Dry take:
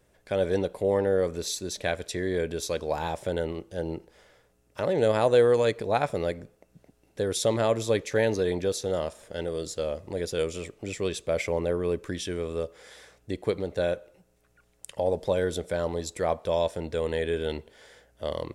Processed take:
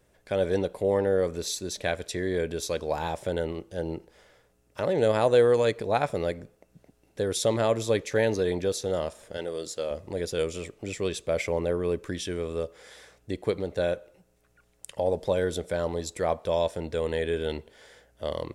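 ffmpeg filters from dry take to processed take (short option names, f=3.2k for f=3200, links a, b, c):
-filter_complex "[0:a]asettb=1/sr,asplit=3[a][b][c];[a]atrim=end=9.374[d];[b]atrim=start=9.37:end=9.91,asetpts=PTS-STARTPTS,afade=t=in:d=0.004:c=qsin,afade=t=out:st=0.536:d=0.004:c=qsin,highpass=f=300:p=1[e];[c]atrim=start=9.906[f];[d][e]acrossfade=d=0.004:c1=hsin:c2=qsin[g];[g][f]acrossfade=d=0.004:c1=qsin:c2=hsin"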